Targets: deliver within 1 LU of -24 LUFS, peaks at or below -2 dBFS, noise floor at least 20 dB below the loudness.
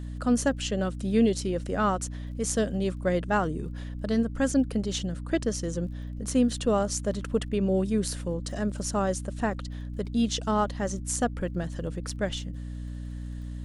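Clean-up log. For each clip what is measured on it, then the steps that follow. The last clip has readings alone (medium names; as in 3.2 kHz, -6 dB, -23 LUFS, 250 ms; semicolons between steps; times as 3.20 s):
tick rate 24 per s; hum 60 Hz; highest harmonic 300 Hz; hum level -34 dBFS; loudness -28.5 LUFS; peak level -12.0 dBFS; loudness target -24.0 LUFS
-> de-click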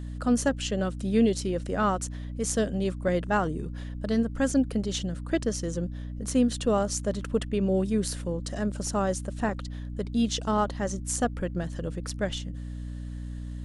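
tick rate 0 per s; hum 60 Hz; highest harmonic 300 Hz; hum level -34 dBFS
-> de-hum 60 Hz, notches 5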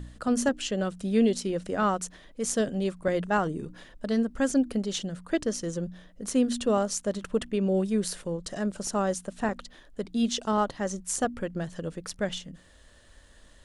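hum not found; loudness -29.0 LUFS; peak level -12.5 dBFS; loudness target -24.0 LUFS
-> trim +5 dB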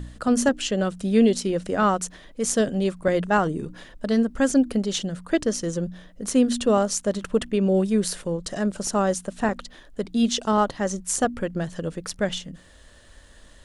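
loudness -24.0 LUFS; peak level -7.5 dBFS; noise floor -50 dBFS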